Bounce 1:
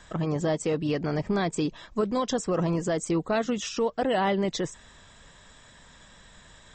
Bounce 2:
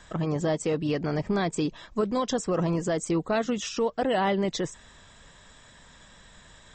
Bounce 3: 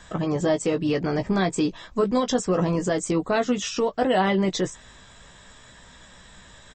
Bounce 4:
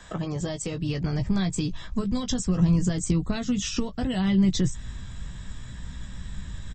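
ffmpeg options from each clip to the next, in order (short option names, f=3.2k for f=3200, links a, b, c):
-af anull
-filter_complex "[0:a]asplit=2[a][b];[b]adelay=16,volume=-6.5dB[c];[a][c]amix=inputs=2:normalize=0,volume=3dB"
-filter_complex "[0:a]acrossover=split=140|3000[a][b][c];[b]acompressor=threshold=-30dB:ratio=6[d];[a][d][c]amix=inputs=3:normalize=0,asubboost=boost=9.5:cutoff=180"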